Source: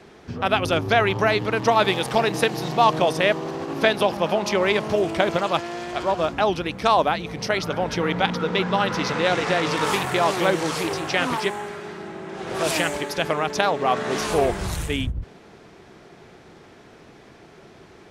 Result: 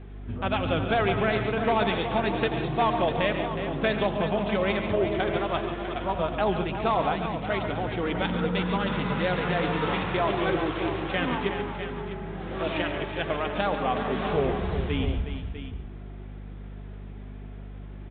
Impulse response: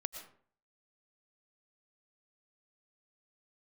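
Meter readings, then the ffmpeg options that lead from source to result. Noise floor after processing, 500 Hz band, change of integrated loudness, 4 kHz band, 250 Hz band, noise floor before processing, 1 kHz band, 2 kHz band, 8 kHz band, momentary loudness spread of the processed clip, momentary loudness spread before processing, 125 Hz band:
-40 dBFS, -4.5 dB, -5.0 dB, -7.5 dB, -1.5 dB, -48 dBFS, -5.5 dB, -6.0 dB, under -40 dB, 17 LU, 8 LU, -0.5 dB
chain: -filter_complex "[0:a]equalizer=f=96:w=0.51:g=9,bandreject=f=60:t=h:w=6,bandreject=f=120:t=h:w=6,flanger=delay=2.5:depth=2.7:regen=-46:speed=0.38:shape=triangular,asoftclip=type=hard:threshold=-14.5dB,aeval=exprs='val(0)+0.0126*(sin(2*PI*50*n/s)+sin(2*PI*2*50*n/s)/2+sin(2*PI*3*50*n/s)/3+sin(2*PI*4*50*n/s)/4+sin(2*PI*5*50*n/s)/5)':c=same,aecho=1:1:84|140|366|649:0.15|0.316|0.335|0.282,asplit=2[a][b];[1:a]atrim=start_sample=2205[c];[b][c]afir=irnorm=-1:irlink=0,volume=1dB[d];[a][d]amix=inputs=2:normalize=0,aresample=8000,aresample=44100,volume=-9dB"

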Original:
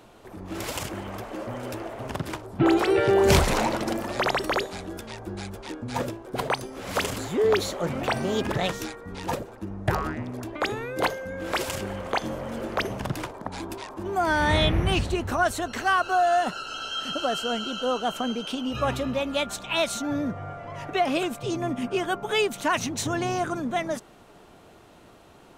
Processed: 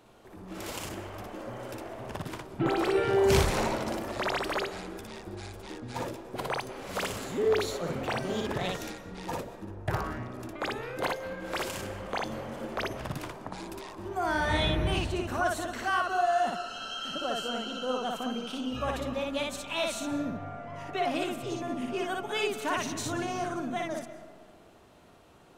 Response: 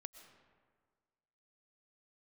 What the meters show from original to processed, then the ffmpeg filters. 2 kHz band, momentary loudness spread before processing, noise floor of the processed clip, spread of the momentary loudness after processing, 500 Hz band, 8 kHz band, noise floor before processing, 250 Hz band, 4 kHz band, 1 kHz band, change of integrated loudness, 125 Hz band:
-5.0 dB, 14 LU, -54 dBFS, 14 LU, -4.5 dB, -5.5 dB, -51 dBFS, -5.5 dB, -5.0 dB, -5.0 dB, -5.0 dB, -5.5 dB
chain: -filter_complex "[0:a]asplit=2[a][b];[1:a]atrim=start_sample=2205,adelay=59[c];[b][c]afir=irnorm=-1:irlink=0,volume=4dB[d];[a][d]amix=inputs=2:normalize=0,volume=-7.5dB"

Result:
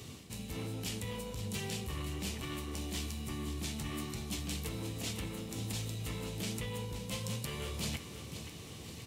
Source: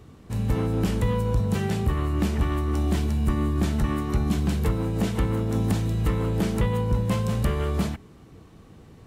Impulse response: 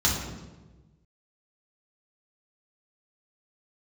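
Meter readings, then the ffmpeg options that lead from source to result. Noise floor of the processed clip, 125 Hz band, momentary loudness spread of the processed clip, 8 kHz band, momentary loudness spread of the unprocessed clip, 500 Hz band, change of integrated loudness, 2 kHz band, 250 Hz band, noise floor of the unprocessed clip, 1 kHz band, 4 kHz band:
-48 dBFS, -16.0 dB, 6 LU, 0.0 dB, 2 LU, -14.5 dB, -14.0 dB, -8.0 dB, -15.5 dB, -49 dBFS, -14.5 dB, -1.0 dB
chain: -filter_complex "[0:a]highpass=68,highshelf=f=7.2k:g=-5,areverse,acompressor=threshold=-35dB:ratio=12,areverse,asoftclip=type=tanh:threshold=-32dB,flanger=delay=7.5:depth=6.5:regen=-44:speed=1.2:shape=sinusoidal,aexciter=amount=5.9:drive=3.5:freq=2.2k,asplit=2[a][b];[b]aecho=0:1:526|1052|1578|2104|2630|3156:0.282|0.149|0.0792|0.042|0.0222|0.0118[c];[a][c]amix=inputs=2:normalize=0,volume=3.5dB"

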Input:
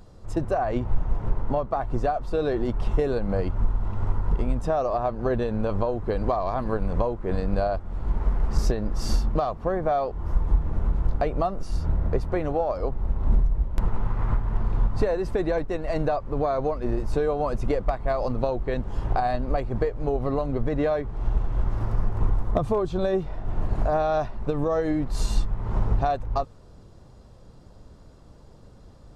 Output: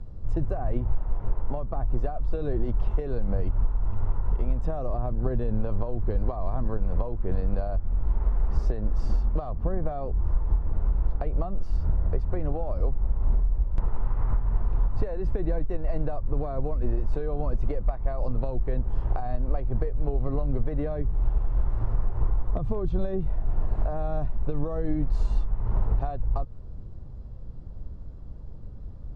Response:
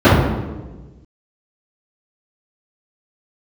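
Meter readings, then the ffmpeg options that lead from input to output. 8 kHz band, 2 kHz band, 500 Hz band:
n/a, -11.5 dB, -8.5 dB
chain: -filter_complex "[0:a]aemphasis=mode=reproduction:type=riaa,acrossover=split=380|1600[a][b][c];[a]acompressor=threshold=-16dB:ratio=4[d];[b]acompressor=threshold=-29dB:ratio=4[e];[c]acompressor=threshold=-50dB:ratio=4[f];[d][e][f]amix=inputs=3:normalize=0,volume=-5.5dB"

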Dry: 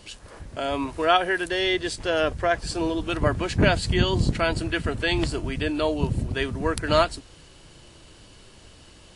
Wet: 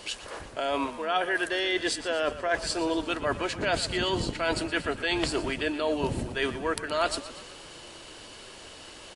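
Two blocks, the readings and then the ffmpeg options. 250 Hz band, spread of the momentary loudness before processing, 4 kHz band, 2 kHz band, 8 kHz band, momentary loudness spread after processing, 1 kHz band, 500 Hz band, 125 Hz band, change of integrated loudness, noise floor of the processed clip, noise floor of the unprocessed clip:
-5.0 dB, 7 LU, -2.0 dB, -2.5 dB, +1.0 dB, 17 LU, -4.0 dB, -4.0 dB, -12.0 dB, -4.5 dB, -46 dBFS, -50 dBFS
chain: -filter_complex "[0:a]bass=f=250:g=-14,treble=f=4k:g=-2,areverse,acompressor=threshold=-32dB:ratio=6,areverse,asplit=7[a][b][c][d][e][f][g];[b]adelay=119,afreqshift=-32,volume=-14.5dB[h];[c]adelay=238,afreqshift=-64,volume=-19.2dB[i];[d]adelay=357,afreqshift=-96,volume=-24dB[j];[e]adelay=476,afreqshift=-128,volume=-28.7dB[k];[f]adelay=595,afreqshift=-160,volume=-33.4dB[l];[g]adelay=714,afreqshift=-192,volume=-38.2dB[m];[a][h][i][j][k][l][m]amix=inputs=7:normalize=0,volume=7dB"

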